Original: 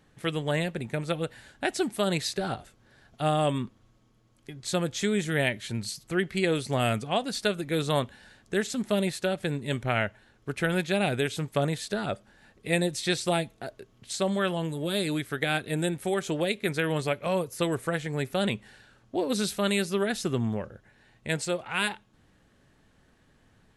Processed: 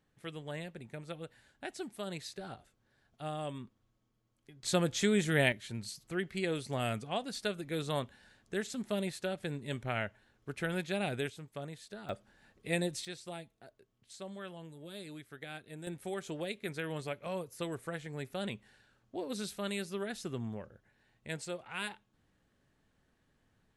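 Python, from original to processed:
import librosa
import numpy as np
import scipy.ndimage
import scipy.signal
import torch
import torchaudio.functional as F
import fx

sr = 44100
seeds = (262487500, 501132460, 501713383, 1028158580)

y = fx.gain(x, sr, db=fx.steps((0.0, -14.0), (4.63, -2.0), (5.52, -8.5), (11.3, -16.5), (12.09, -7.0), (13.05, -18.0), (15.87, -11.0)))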